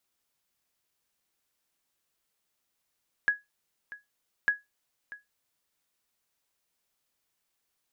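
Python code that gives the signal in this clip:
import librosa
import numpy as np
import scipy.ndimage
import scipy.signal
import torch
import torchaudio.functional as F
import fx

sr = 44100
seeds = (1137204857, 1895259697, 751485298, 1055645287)

y = fx.sonar_ping(sr, hz=1670.0, decay_s=0.18, every_s=1.2, pings=2, echo_s=0.64, echo_db=-18.0, level_db=-16.0)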